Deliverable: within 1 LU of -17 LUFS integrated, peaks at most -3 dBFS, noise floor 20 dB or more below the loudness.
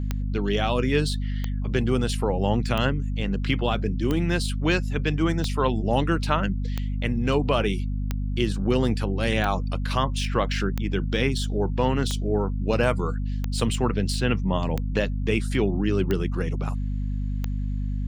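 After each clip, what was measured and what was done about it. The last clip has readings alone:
clicks found 14; hum 50 Hz; highest harmonic 250 Hz; hum level -24 dBFS; loudness -25.5 LUFS; peak level -8.5 dBFS; loudness target -17.0 LUFS
-> de-click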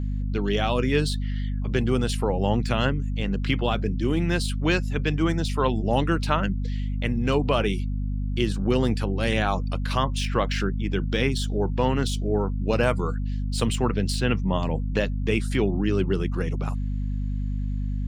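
clicks found 0; hum 50 Hz; highest harmonic 250 Hz; hum level -24 dBFS
-> de-hum 50 Hz, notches 5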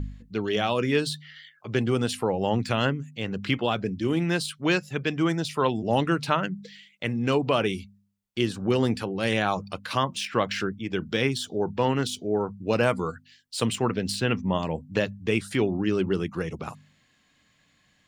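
hum not found; loudness -26.5 LUFS; peak level -9.0 dBFS; loudness target -17.0 LUFS
-> trim +9.5 dB; peak limiter -3 dBFS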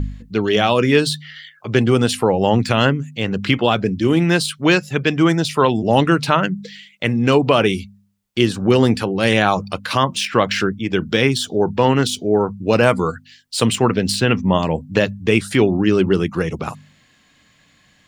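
loudness -17.5 LUFS; peak level -3.0 dBFS; noise floor -56 dBFS

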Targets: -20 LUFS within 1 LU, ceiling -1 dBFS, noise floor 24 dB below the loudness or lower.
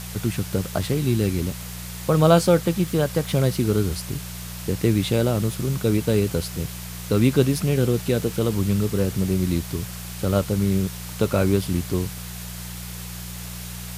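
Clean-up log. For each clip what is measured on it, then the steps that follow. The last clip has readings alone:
hum 60 Hz; highest harmonic 180 Hz; hum level -33 dBFS; noise floor -35 dBFS; noise floor target -47 dBFS; loudness -22.5 LUFS; peak level -2.5 dBFS; loudness target -20.0 LUFS
-> de-hum 60 Hz, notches 3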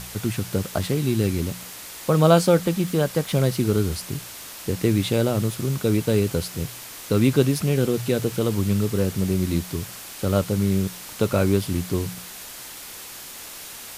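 hum not found; noise floor -39 dBFS; noise floor target -47 dBFS
-> noise reduction 8 dB, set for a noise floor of -39 dBFS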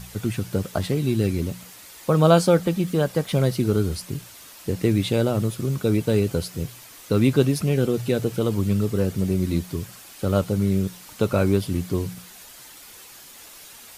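noise floor -45 dBFS; noise floor target -47 dBFS
-> noise reduction 6 dB, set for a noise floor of -45 dBFS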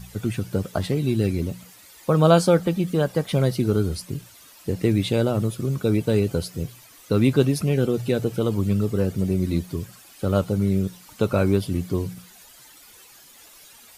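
noise floor -49 dBFS; loudness -23.0 LUFS; peak level -3.0 dBFS; loudness target -20.0 LUFS
-> trim +3 dB; peak limiter -1 dBFS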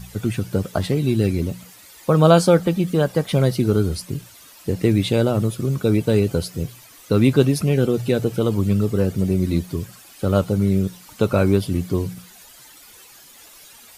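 loudness -20.0 LUFS; peak level -1.0 dBFS; noise floor -46 dBFS

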